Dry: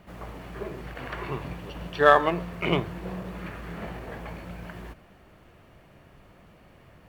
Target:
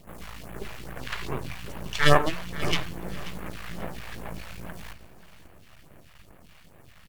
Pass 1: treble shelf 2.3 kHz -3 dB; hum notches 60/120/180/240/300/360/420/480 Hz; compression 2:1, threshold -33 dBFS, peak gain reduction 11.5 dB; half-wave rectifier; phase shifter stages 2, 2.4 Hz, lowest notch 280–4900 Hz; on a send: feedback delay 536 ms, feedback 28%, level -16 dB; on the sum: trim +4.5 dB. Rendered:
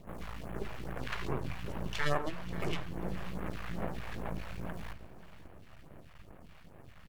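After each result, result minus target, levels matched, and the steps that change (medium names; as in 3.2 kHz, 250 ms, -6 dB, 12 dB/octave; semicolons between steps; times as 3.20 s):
compression: peak gain reduction +11.5 dB; 4 kHz band -3.5 dB
remove: compression 2:1, threshold -33 dBFS, peak gain reduction 11.5 dB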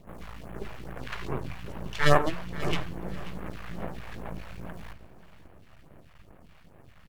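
4 kHz band -4.0 dB
change: treble shelf 2.3 kHz +8.5 dB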